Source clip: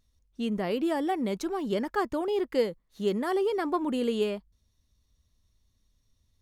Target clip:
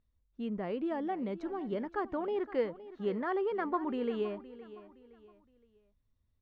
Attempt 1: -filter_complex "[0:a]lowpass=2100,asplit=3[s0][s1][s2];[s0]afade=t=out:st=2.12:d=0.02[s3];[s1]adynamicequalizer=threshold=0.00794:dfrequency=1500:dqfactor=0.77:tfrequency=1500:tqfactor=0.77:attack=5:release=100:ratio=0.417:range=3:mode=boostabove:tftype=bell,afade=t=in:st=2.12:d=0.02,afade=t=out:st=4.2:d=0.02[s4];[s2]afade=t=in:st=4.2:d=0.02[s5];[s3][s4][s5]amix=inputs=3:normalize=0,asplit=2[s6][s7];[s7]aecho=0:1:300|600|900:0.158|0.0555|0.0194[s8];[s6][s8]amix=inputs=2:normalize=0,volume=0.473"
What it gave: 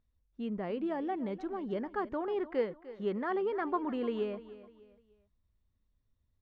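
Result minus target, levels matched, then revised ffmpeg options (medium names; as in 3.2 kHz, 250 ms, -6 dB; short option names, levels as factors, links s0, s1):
echo 216 ms early
-filter_complex "[0:a]lowpass=2100,asplit=3[s0][s1][s2];[s0]afade=t=out:st=2.12:d=0.02[s3];[s1]adynamicequalizer=threshold=0.00794:dfrequency=1500:dqfactor=0.77:tfrequency=1500:tqfactor=0.77:attack=5:release=100:ratio=0.417:range=3:mode=boostabove:tftype=bell,afade=t=in:st=2.12:d=0.02,afade=t=out:st=4.2:d=0.02[s4];[s2]afade=t=in:st=4.2:d=0.02[s5];[s3][s4][s5]amix=inputs=3:normalize=0,asplit=2[s6][s7];[s7]aecho=0:1:516|1032|1548:0.158|0.0555|0.0194[s8];[s6][s8]amix=inputs=2:normalize=0,volume=0.473"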